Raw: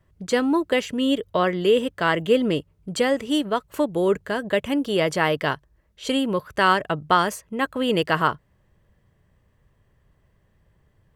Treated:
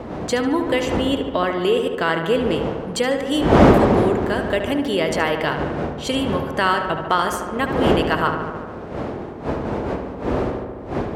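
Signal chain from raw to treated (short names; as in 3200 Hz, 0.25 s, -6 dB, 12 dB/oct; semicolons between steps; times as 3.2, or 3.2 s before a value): wind noise 440 Hz -20 dBFS; HPF 57 Hz; bell 140 Hz -4 dB 2.1 oct; in parallel at +2.5 dB: compressor 10:1, threshold -24 dBFS, peak gain reduction 21 dB; on the sum: overloaded stage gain 2 dB; on a send: darkening echo 73 ms, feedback 77%, low-pass 3300 Hz, level -7.5 dB; on the sum: gain -3.5 dB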